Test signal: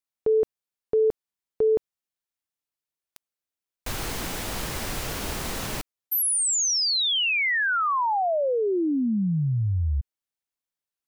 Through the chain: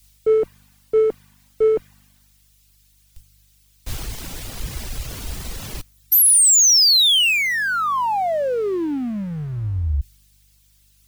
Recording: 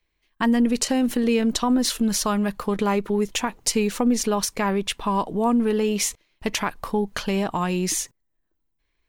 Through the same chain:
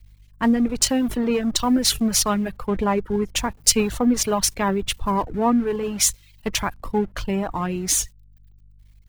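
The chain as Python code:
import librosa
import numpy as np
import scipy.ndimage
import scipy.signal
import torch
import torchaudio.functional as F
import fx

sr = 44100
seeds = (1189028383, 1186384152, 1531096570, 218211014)

p1 = x + 0.5 * 10.0 ** (-36.0 / 20.0) * np.sign(x)
p2 = fx.add_hum(p1, sr, base_hz=50, snr_db=16)
p3 = fx.schmitt(p2, sr, flips_db=-25.5)
p4 = p2 + F.gain(torch.from_numpy(p3), -8.0).numpy()
p5 = fx.dereverb_blind(p4, sr, rt60_s=0.79)
p6 = fx.band_widen(p5, sr, depth_pct=100)
y = F.gain(torch.from_numpy(p6), -1.0).numpy()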